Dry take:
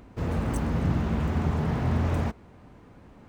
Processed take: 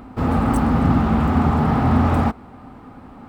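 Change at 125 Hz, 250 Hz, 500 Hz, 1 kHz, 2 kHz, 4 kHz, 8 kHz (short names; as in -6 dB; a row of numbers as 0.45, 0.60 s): +7.0 dB, +11.5 dB, +8.0 dB, +14.0 dB, +8.5 dB, +6.5 dB, n/a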